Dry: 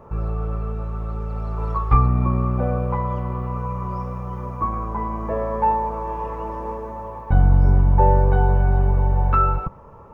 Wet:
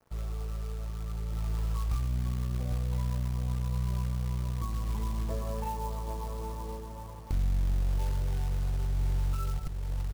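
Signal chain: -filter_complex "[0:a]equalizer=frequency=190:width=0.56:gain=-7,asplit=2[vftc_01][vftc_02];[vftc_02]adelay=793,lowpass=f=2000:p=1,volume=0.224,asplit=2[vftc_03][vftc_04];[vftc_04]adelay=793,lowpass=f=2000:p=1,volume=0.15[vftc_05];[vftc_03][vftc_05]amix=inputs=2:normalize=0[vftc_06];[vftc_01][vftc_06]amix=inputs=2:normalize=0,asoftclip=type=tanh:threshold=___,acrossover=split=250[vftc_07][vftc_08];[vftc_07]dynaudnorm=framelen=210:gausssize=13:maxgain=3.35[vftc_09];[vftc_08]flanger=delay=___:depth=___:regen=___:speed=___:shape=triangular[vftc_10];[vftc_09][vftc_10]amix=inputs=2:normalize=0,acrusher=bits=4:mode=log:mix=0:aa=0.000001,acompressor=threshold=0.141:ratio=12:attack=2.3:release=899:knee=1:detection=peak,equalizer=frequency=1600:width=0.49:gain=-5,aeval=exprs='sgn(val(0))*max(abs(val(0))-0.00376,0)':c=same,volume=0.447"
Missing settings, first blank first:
0.237, 5.7, 6, -15, 0.7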